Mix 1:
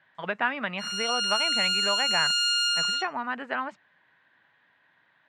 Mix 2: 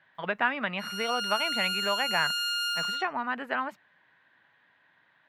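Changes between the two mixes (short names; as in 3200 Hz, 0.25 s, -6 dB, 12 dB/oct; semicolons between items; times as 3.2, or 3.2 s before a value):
background: add tilt -3.5 dB/oct; master: remove steep low-pass 8400 Hz 36 dB/oct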